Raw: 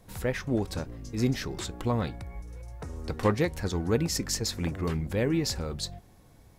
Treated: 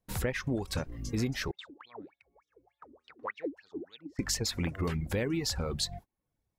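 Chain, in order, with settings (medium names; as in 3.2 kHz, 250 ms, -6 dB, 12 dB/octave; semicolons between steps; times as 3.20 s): reverb removal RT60 0.68 s; gate -49 dBFS, range -31 dB; 1.51–4.19 s: wah-wah 3.4 Hz 270–3800 Hz, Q 20; dynamic bell 2.2 kHz, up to +4 dB, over -47 dBFS, Q 1.2; compression 6:1, threshold -34 dBFS, peak gain reduction 13 dB; trim +5.5 dB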